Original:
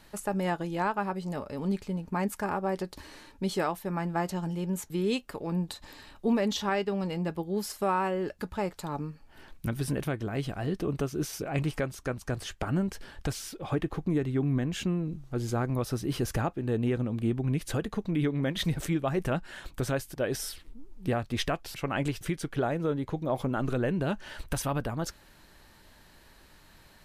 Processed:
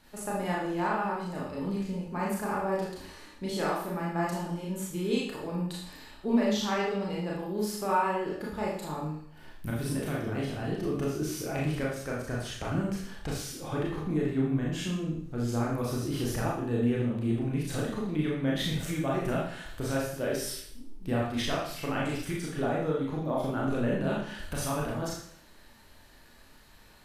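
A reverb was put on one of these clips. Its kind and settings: Schroeder reverb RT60 0.61 s, combs from 26 ms, DRR -4.5 dB; gain -5.5 dB

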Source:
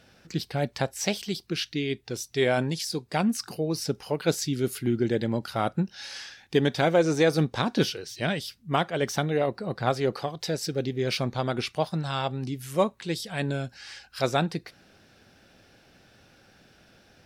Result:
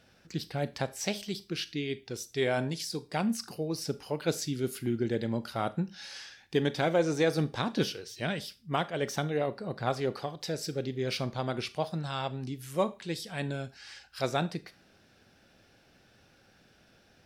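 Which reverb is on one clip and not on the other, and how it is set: Schroeder reverb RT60 0.31 s, combs from 27 ms, DRR 14.5 dB; gain -5 dB

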